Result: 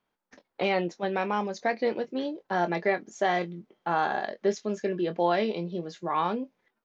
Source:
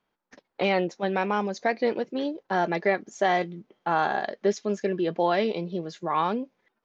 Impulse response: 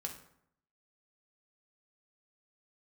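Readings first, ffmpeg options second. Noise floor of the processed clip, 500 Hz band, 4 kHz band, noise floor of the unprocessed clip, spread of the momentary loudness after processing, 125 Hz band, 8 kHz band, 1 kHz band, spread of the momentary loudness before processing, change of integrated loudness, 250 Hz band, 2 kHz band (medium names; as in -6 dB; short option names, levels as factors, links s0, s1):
-81 dBFS, -2.0 dB, -2.0 dB, -80 dBFS, 7 LU, -2.0 dB, no reading, -2.0 dB, 8 LU, -2.0 dB, -2.0 dB, -2.0 dB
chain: -filter_complex "[0:a]asplit=2[s0][s1];[s1]adelay=23,volume=0.282[s2];[s0][s2]amix=inputs=2:normalize=0,volume=0.75"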